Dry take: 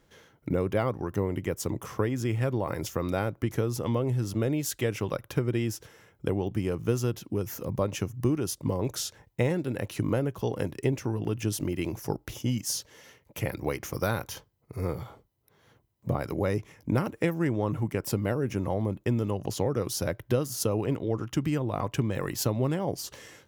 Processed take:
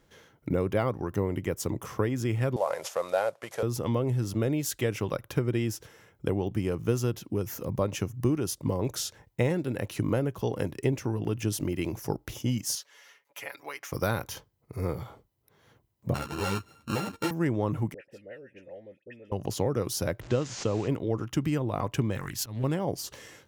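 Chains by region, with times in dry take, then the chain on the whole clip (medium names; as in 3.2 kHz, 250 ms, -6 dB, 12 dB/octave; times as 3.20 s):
2.56–3.63 s: CVSD coder 64 kbps + high-pass 190 Hz + resonant low shelf 410 Hz -11 dB, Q 3
12.75–13.92 s: high-pass 1.2 kHz + tilt EQ -2 dB/octave + comb 7.1 ms, depth 84%
16.14–17.31 s: sorted samples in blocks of 32 samples + treble shelf 11 kHz -5.5 dB + three-phase chorus
17.94–19.32 s: vowel filter e + peaking EQ 490 Hz -8.5 dB 1.1 oct + phase dispersion highs, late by 69 ms, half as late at 1.6 kHz
20.21–20.88 s: one-bit delta coder 64 kbps, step -38 dBFS + Chebyshev low-pass 7.2 kHz, order 4
22.17–22.64 s: peaking EQ 480 Hz -12.5 dB 1.8 oct + slow attack 115 ms + loudspeaker Doppler distortion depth 0.32 ms
whole clip: none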